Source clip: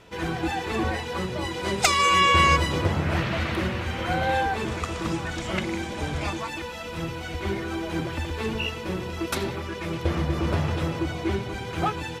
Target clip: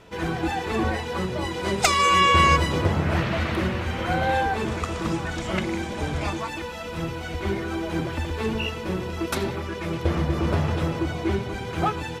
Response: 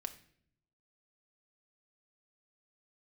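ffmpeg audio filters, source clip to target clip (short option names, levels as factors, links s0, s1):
-filter_complex "[0:a]asplit=2[s0][s1];[1:a]atrim=start_sample=2205,lowpass=2000[s2];[s1][s2]afir=irnorm=-1:irlink=0,volume=0.398[s3];[s0][s3]amix=inputs=2:normalize=0"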